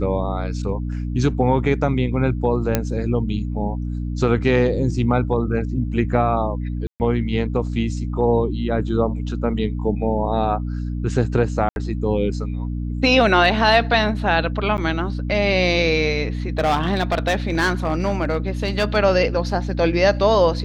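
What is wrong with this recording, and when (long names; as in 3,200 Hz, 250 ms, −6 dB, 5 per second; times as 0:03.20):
mains hum 60 Hz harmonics 5 −25 dBFS
0:02.75: click −3 dBFS
0:06.87–0:07.00: drop-out 129 ms
0:11.69–0:11.76: drop-out 71 ms
0:14.77–0:14.78: drop-out 9.7 ms
0:16.59–0:18.97: clipping −14 dBFS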